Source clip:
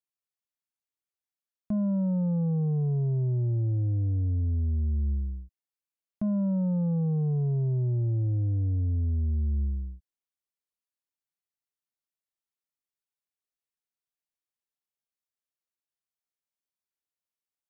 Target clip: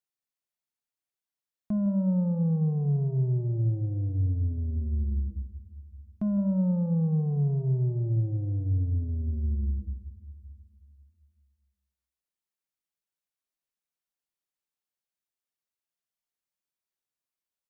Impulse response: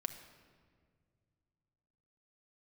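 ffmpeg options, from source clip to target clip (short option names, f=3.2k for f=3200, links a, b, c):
-filter_complex "[0:a]asplit=2[a][b];[b]adelay=157.4,volume=-12dB,highshelf=f=4k:g=-3.54[c];[a][c]amix=inputs=2:normalize=0,asplit=2[d][e];[1:a]atrim=start_sample=2205[f];[e][f]afir=irnorm=-1:irlink=0,volume=1dB[g];[d][g]amix=inputs=2:normalize=0,volume=-6.5dB"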